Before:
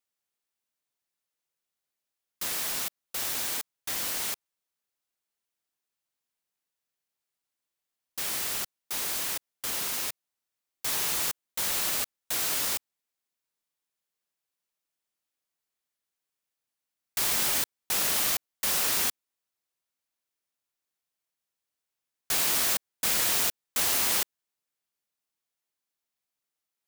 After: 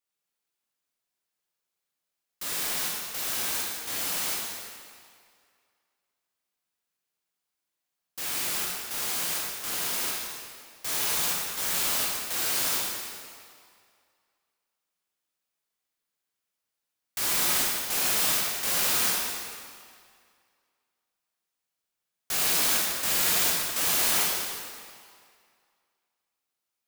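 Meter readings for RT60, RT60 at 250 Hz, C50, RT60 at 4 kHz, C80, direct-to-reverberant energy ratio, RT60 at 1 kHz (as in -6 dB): 2.1 s, 1.9 s, -1.5 dB, 1.8 s, 0.5 dB, -5.0 dB, 2.2 s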